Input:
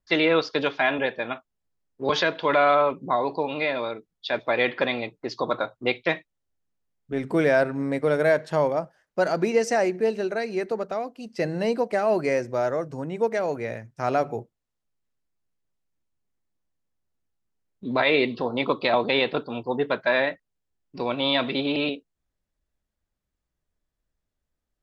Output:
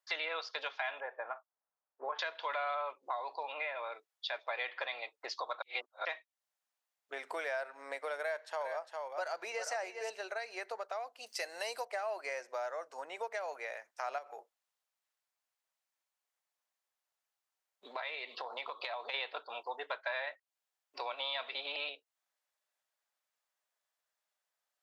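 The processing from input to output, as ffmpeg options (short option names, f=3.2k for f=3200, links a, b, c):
-filter_complex "[0:a]asettb=1/sr,asplit=3[a][b][c];[a]atrim=end=1.004[d];[b]atrim=start=1:end=2.19,asetpts=PTS-STARTPTS,afade=t=in:d=0.004:c=qsin,afade=t=out:st=1.186:d=0.004:c=qsin,lowpass=f=1.5k:w=0.5412,lowpass=f=1.5k:w=1.3066[e];[c]atrim=start=2.186[f];[d][e]acrossfade=d=0.004:c1=hsin:c2=qsin[g];[g][f]acrossfade=d=0.004:c1=qsin:c2=hsin,asettb=1/sr,asplit=3[h][i][j];[h]atrim=end=3.524[k];[i]atrim=start=3.52:end=3.92,asetpts=PTS-STARTPTS,afade=t=in:d=0.004:c=qsin,afade=t=out:st=0.396:d=0.004:c=qsin,lowpass=f=2.9k:w=0.5412,lowpass=f=2.9k:w=1.3066[l];[j]atrim=start=3.916[m];[k][l]acrossfade=d=0.004:c1=hsin:c2=qsin[n];[n][m]acrossfade=d=0.004:c1=qsin:c2=hsin,asettb=1/sr,asplit=3[o][p][q];[o]atrim=end=8.204[r];[p]atrim=start=8.2:end=10.1,asetpts=PTS-STARTPTS,afade=t=in:d=0.004:c=qsin,afade=t=out:st=1.896:d=0.004:c=qsin,aecho=1:1:404:0.355,atrim=end_sample=83790[s];[q]atrim=start=10.096[t];[r][s]acrossfade=d=0.004:c1=hsin:c2=qsin[u];[u][t]acrossfade=d=0.004:c1=qsin:c2=hsin,asettb=1/sr,asplit=3[v][w][x];[v]atrim=end=11.264[y];[w]atrim=start=11.26:end=11.85,asetpts=PTS-STARTPTS,afade=t=in:d=0.004:c=qsin,afade=t=out:st=0.586:d=0.004:c=qsin,aemphasis=mode=production:type=75kf[z];[x]atrim=start=11.846[aa];[y][z]acrossfade=d=0.004:c1=hsin:c2=qsin[ab];[ab][aa]acrossfade=d=0.004:c1=qsin:c2=hsin,asettb=1/sr,asplit=3[ac][ad][ae];[ac]atrim=end=14.184[af];[ad]atrim=start=14.18:end=19.14,asetpts=PTS-STARTPTS,afade=t=in:d=0.004:c=qsin,afade=t=out:st=4.956:d=0.004:c=qsin,acompressor=threshold=-27dB:ratio=6:attack=3.2:release=140:knee=1:detection=peak[ag];[ae]atrim=start=19.136[ah];[af][ag]acrossfade=d=0.004:c1=hsin:c2=qsin[ai];[ai][ah]acrossfade=d=0.004:c1=qsin:c2=hsin,asplit=3[aj][ak][al];[aj]atrim=end=5.622[am];[ak]atrim=start=5.618:end=6.052,asetpts=PTS-STARTPTS,areverse[an];[al]atrim=start=6.048[ao];[am][an]acrossfade=d=0.004:c1=hsin:c2=hsin[ap];[ap][ao]acrossfade=d=0.004:c1=hsin:c2=hsin,highpass=f=660:w=0.5412,highpass=f=660:w=1.3066,acompressor=threshold=-42dB:ratio=3,volume=2dB"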